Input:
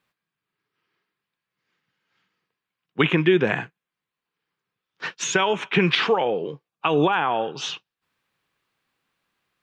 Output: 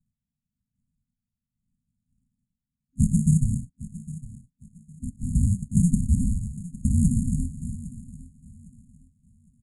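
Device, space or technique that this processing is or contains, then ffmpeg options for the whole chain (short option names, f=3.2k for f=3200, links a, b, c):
crushed at another speed: -af "asetrate=88200,aresample=44100,acrusher=samples=42:mix=1:aa=0.000001,asetrate=22050,aresample=44100,afftfilt=real='re*(1-between(b*sr/4096,260,6600))':imag='im*(1-between(b*sr/4096,260,6600))':win_size=4096:overlap=0.75,aecho=1:1:808|1616|2424:0.141|0.0396|0.0111"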